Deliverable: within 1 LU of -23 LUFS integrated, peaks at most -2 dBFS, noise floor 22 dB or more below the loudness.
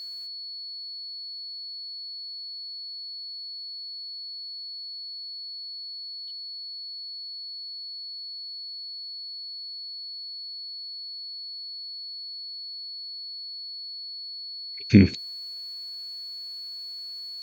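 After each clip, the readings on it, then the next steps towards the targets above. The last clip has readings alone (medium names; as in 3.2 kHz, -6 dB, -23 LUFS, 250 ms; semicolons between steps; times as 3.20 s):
steady tone 4.4 kHz; tone level -35 dBFS; loudness -32.0 LUFS; peak level -1.5 dBFS; loudness target -23.0 LUFS
-> band-stop 4.4 kHz, Q 30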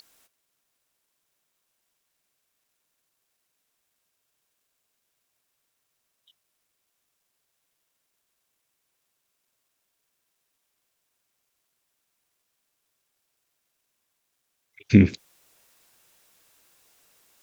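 steady tone not found; loudness -19.5 LUFS; peak level -2.0 dBFS; loudness target -23.0 LUFS
-> trim -3.5 dB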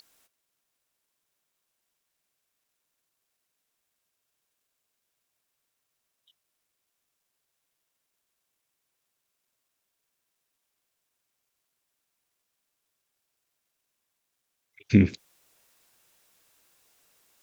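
loudness -23.0 LUFS; peak level -5.5 dBFS; noise floor -81 dBFS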